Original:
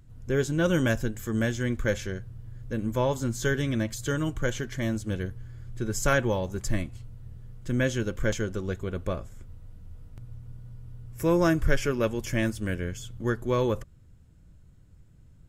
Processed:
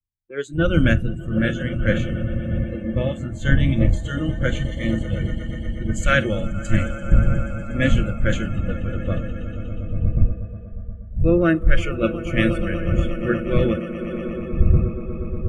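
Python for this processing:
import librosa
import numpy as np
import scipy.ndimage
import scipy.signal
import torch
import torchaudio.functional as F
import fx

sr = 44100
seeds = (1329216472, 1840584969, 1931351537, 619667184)

p1 = fx.dmg_wind(x, sr, seeds[0], corner_hz=110.0, level_db=-31.0)
p2 = scipy.signal.sosfilt(scipy.signal.butter(4, 7300.0, 'lowpass', fs=sr, output='sos'), p1)
p3 = fx.echo_swell(p2, sr, ms=120, loudest=8, wet_db=-12.0)
p4 = fx.rider(p3, sr, range_db=4, speed_s=0.5)
p5 = p3 + (p4 * librosa.db_to_amplitude(-2.0))
p6 = fx.dynamic_eq(p5, sr, hz=1300.0, q=5.7, threshold_db=-46.0, ratio=4.0, max_db=7)
p7 = fx.fixed_phaser(p6, sr, hz=2300.0, stages=4)
p8 = fx.noise_reduce_blind(p7, sr, reduce_db=21)
p9 = fx.hum_notches(p8, sr, base_hz=60, count=5)
p10 = fx.band_widen(p9, sr, depth_pct=100)
y = p10 * librosa.db_to_amplitude(1.0)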